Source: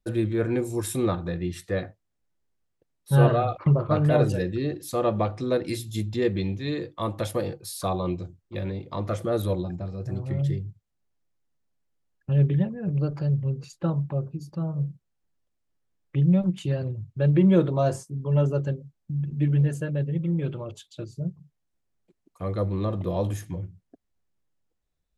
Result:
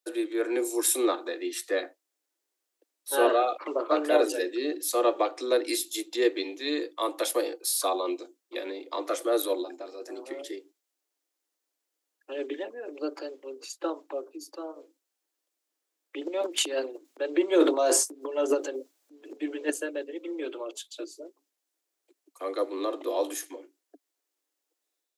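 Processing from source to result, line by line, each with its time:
16.21–19.7 transient shaper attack -4 dB, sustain +11 dB
whole clip: steep high-pass 280 Hz 96 dB/oct; high shelf 3500 Hz +10 dB; AGC gain up to 4 dB; gain -3.5 dB

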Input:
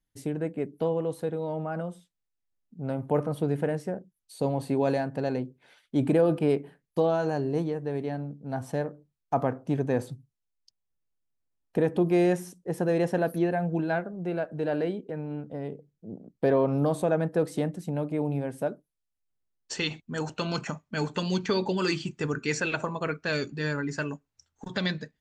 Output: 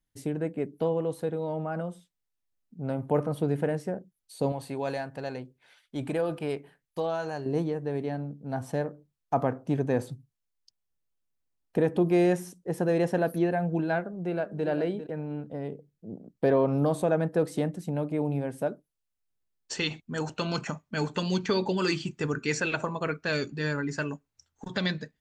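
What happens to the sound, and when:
4.52–7.46 bell 240 Hz -9.5 dB 2.8 oct
13.99–14.66 echo throw 0.4 s, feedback 10%, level -11.5 dB

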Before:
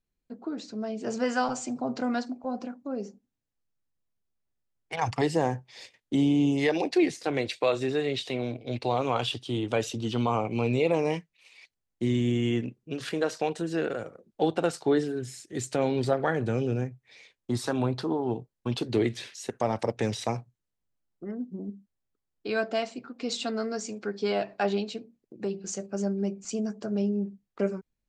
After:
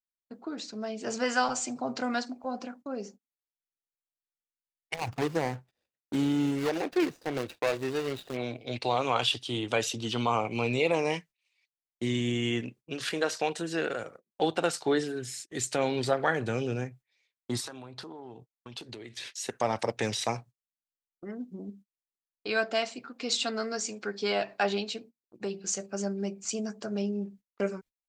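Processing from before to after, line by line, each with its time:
4.94–8.37 median filter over 41 samples
17.6–19.37 compressor, threshold -39 dBFS
whole clip: gate -46 dBFS, range -25 dB; tilt shelf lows -5 dB, about 750 Hz

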